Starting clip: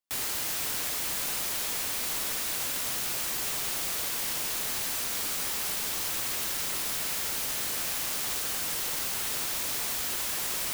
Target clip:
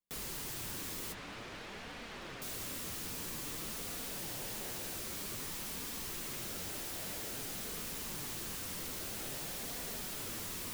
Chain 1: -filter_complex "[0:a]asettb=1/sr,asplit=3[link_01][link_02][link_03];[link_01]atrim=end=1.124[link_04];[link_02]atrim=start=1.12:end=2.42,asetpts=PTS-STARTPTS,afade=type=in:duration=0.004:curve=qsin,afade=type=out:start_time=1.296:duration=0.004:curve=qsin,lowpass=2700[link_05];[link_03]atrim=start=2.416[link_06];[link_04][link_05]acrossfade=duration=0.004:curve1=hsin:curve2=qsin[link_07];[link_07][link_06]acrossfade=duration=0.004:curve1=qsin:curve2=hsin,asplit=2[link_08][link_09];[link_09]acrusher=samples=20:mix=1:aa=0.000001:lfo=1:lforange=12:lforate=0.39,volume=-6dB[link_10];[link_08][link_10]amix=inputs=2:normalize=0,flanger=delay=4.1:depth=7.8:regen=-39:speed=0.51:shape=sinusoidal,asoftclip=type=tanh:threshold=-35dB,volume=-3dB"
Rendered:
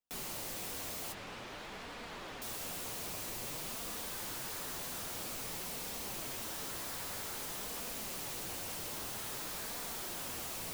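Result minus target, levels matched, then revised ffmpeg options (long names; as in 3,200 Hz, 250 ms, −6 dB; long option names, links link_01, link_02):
sample-and-hold swept by an LFO: distortion −7 dB
-filter_complex "[0:a]asettb=1/sr,asplit=3[link_01][link_02][link_03];[link_01]atrim=end=1.124[link_04];[link_02]atrim=start=1.12:end=2.42,asetpts=PTS-STARTPTS,afade=type=in:duration=0.004:curve=qsin,afade=type=out:start_time=1.296:duration=0.004:curve=qsin,lowpass=2700[link_05];[link_03]atrim=start=2.416[link_06];[link_04][link_05]acrossfade=duration=0.004:curve1=hsin:curve2=qsin[link_07];[link_07][link_06]acrossfade=duration=0.004:curve1=qsin:curve2=hsin,asplit=2[link_08][link_09];[link_09]acrusher=samples=48:mix=1:aa=0.000001:lfo=1:lforange=28.8:lforate=0.39,volume=-6dB[link_10];[link_08][link_10]amix=inputs=2:normalize=0,flanger=delay=4.1:depth=7.8:regen=-39:speed=0.51:shape=sinusoidal,asoftclip=type=tanh:threshold=-35dB,volume=-3dB"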